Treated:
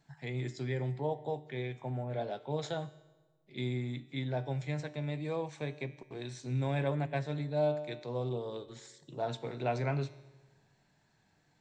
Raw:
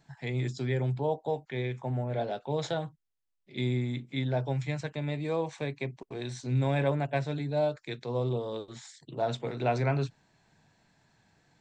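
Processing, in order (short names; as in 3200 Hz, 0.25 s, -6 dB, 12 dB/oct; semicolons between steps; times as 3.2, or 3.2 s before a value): resonator 150 Hz, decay 0.99 s, harmonics all, mix 60%; on a send: reverb RT60 1.5 s, pre-delay 3 ms, DRR 20 dB; on the sum: gain +2.5 dB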